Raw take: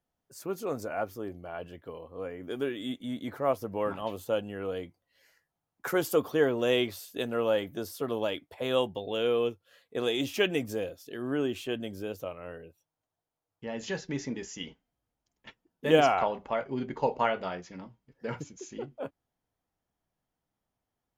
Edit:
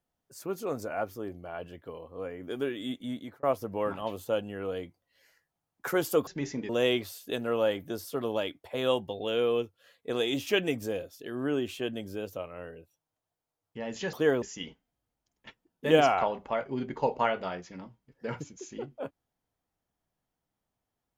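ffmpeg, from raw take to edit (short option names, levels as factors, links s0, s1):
-filter_complex "[0:a]asplit=6[s0][s1][s2][s3][s4][s5];[s0]atrim=end=3.43,asetpts=PTS-STARTPTS,afade=t=out:st=3.11:d=0.32[s6];[s1]atrim=start=3.43:end=6.272,asetpts=PTS-STARTPTS,afade=t=in:d=0.004:c=hsin[s7];[s2]atrim=start=13.998:end=14.422[s8];[s3]atrim=start=6.558:end=14.002[s9];[s4]atrim=start=6.268:end=6.562[s10];[s5]atrim=start=14.418[s11];[s6][s7]concat=n=2:v=0:a=1[s12];[s12][s8]acrossfade=d=0.004:c1=hsin:c2=hsin[s13];[s13][s9]acrossfade=d=0.004:c1=hsin:c2=hsin[s14];[s14][s10]acrossfade=d=0.004:c1=hsin:c2=hsin[s15];[s15][s11]acrossfade=d=0.004:c1=hsin:c2=hsin"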